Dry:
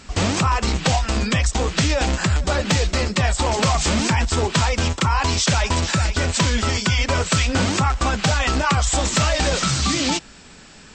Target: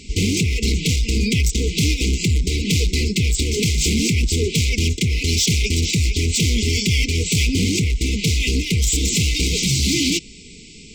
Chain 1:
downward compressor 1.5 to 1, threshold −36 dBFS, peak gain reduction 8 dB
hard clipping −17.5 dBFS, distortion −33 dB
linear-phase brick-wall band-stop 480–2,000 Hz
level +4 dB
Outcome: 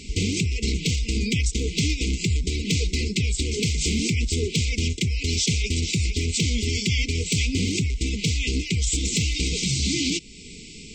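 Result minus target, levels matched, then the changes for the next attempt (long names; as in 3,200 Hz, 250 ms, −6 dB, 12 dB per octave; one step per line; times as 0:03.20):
downward compressor: peak gain reduction +8 dB
remove: downward compressor 1.5 to 1, threshold −36 dBFS, peak gain reduction 8 dB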